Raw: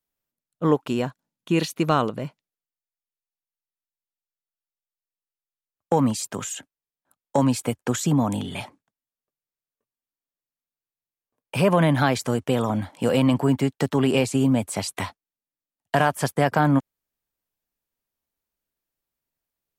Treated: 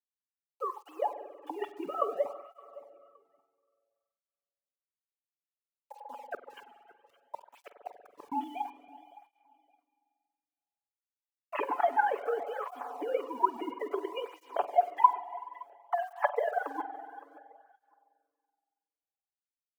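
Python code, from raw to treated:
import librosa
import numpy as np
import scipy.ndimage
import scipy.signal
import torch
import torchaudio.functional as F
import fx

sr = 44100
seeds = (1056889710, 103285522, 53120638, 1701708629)

y = fx.sine_speech(x, sr)
y = y + 0.97 * np.pad(y, (int(7.0 * sr / 1000.0), 0))[:len(y)]
y = fx.over_compress(y, sr, threshold_db=-23.0, ratio=-1.0)
y = fx.transient(y, sr, attack_db=7, sustain_db=-1)
y = fx.bandpass_q(y, sr, hz=850.0, q=3.6)
y = fx.gate_flip(y, sr, shuts_db=-24.0, range_db=-35, at=(5.94, 8.32))
y = fx.quant_dither(y, sr, seeds[0], bits=10, dither='none')
y = fx.echo_feedback(y, sr, ms=566, feedback_pct=19, wet_db=-18)
y = fx.rev_spring(y, sr, rt60_s=2.0, pass_ms=(46,), chirp_ms=25, drr_db=10.5)
y = fx.flanger_cancel(y, sr, hz=0.59, depth_ms=2.0)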